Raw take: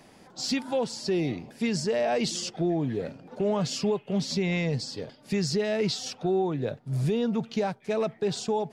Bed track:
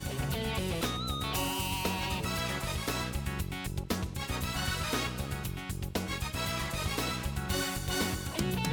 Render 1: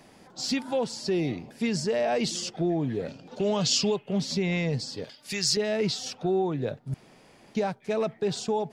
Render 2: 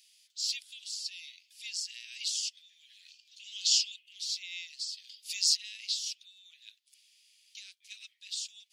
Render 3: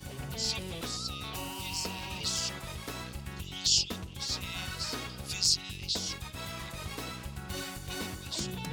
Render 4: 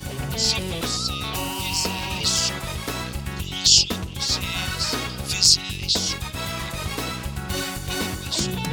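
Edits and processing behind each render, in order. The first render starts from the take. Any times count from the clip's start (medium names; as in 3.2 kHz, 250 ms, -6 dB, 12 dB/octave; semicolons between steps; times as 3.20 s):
3.08–3.96 s: high-order bell 4.5 kHz +9.5 dB; 5.04–5.57 s: tilt shelf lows -9.5 dB, about 1.2 kHz; 6.94–7.55 s: room tone
steep high-pass 2.8 kHz 36 dB/octave
add bed track -6.5 dB
trim +11 dB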